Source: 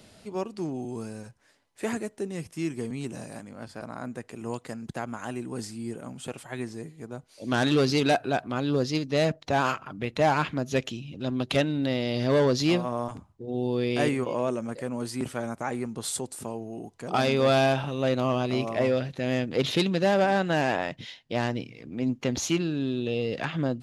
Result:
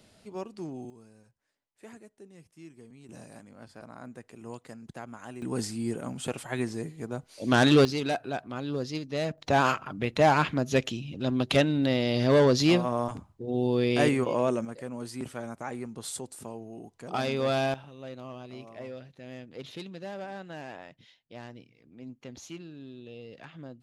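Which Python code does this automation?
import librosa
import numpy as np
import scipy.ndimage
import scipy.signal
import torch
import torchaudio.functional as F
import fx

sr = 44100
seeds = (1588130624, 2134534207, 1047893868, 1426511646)

y = fx.gain(x, sr, db=fx.steps((0.0, -6.0), (0.9, -18.0), (3.09, -8.0), (5.42, 3.5), (7.85, -6.5), (9.38, 1.5), (14.65, -5.5), (17.74, -16.5)))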